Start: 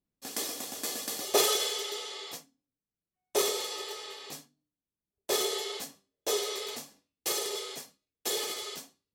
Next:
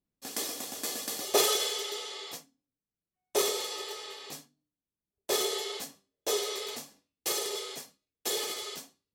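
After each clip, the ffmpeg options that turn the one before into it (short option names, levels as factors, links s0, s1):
-af anull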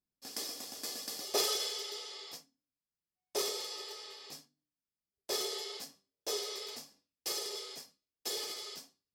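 -af "equalizer=f=5000:t=o:w=0.29:g=10.5,volume=0.398"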